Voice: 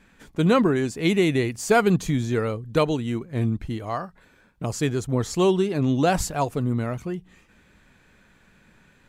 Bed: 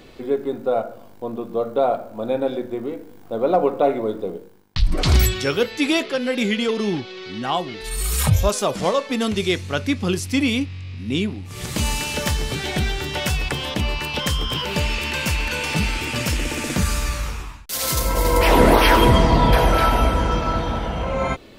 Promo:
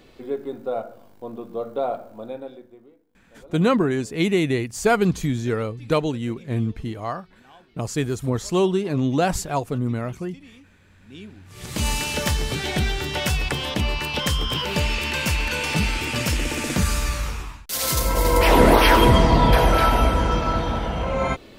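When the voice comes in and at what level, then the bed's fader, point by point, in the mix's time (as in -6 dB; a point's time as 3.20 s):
3.15 s, 0.0 dB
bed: 2.11 s -6 dB
3.06 s -28 dB
10.82 s -28 dB
11.87 s -0.5 dB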